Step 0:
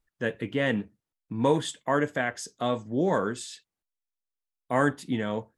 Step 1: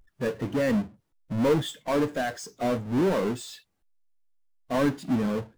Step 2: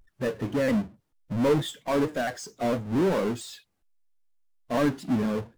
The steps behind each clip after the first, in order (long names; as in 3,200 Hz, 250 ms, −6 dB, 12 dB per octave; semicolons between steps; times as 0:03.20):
each half-wave held at its own peak; power curve on the samples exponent 0.5; every bin expanded away from the loudest bin 1.5 to 1; level −4.5 dB
pitch modulation by a square or saw wave saw down 4.4 Hz, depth 100 cents